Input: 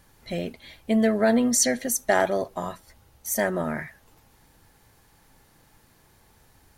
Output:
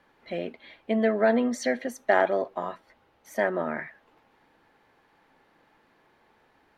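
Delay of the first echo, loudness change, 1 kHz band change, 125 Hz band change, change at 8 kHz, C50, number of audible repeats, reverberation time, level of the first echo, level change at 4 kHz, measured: none, -3.0 dB, 0.0 dB, -7.5 dB, -19.0 dB, none, none, none, none, -9.0 dB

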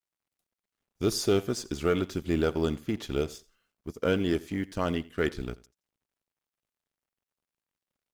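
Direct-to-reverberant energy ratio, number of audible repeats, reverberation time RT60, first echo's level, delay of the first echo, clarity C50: none, 2, none, -21.0 dB, 86 ms, none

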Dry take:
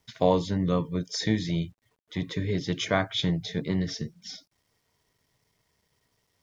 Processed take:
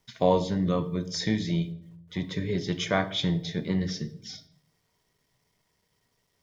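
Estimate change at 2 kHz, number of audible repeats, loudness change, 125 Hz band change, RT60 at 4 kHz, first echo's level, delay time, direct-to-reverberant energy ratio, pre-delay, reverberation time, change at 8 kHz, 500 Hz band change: -0.5 dB, none, 0.0 dB, -0.5 dB, 0.45 s, none, none, 9.5 dB, 4 ms, 0.70 s, n/a, 0.0 dB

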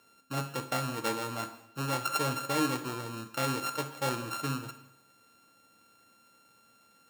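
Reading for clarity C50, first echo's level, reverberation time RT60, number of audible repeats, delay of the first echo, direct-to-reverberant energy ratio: 11.0 dB, none, 0.85 s, none, none, 7.5 dB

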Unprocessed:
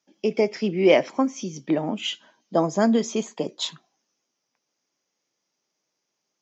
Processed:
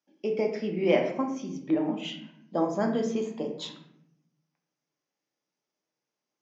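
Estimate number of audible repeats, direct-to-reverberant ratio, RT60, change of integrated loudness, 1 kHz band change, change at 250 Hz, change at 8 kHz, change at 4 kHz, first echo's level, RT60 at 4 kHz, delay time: none, 2.5 dB, 0.70 s, -5.5 dB, -5.5 dB, -5.0 dB, n/a, -9.5 dB, none, 0.50 s, none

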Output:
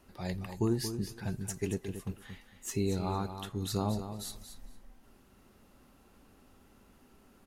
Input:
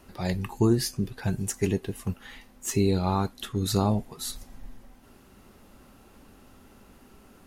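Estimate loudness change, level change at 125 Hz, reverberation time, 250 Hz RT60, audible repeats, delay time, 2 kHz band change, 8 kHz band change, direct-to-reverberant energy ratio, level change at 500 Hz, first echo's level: -7.5 dB, -7.5 dB, none, none, 2, 0.228 s, -7.5 dB, -7.5 dB, none, -7.5 dB, -9.5 dB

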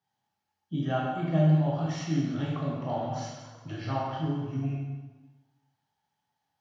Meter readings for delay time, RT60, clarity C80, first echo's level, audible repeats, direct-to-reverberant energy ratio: none, 1.2 s, 3.0 dB, none, none, -4.0 dB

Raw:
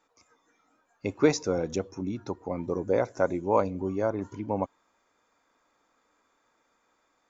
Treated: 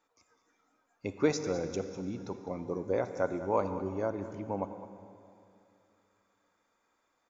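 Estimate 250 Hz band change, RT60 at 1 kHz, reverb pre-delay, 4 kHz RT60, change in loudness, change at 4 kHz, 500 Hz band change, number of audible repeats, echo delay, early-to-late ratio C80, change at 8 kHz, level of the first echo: -5.0 dB, 2.7 s, 31 ms, 2.5 s, -5.0 dB, -5.0 dB, -5.0 dB, 1, 0.205 s, 9.5 dB, n/a, -14.5 dB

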